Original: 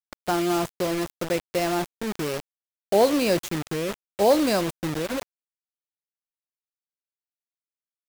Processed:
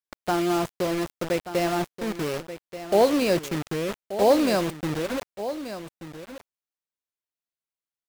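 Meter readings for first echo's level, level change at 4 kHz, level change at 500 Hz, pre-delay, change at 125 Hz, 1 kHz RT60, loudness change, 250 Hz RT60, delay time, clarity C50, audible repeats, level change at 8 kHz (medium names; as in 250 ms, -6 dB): -12.0 dB, -1.5 dB, 0.0 dB, no reverb, +0.5 dB, no reverb, -0.5 dB, no reverb, 1182 ms, no reverb, 1, -2.5 dB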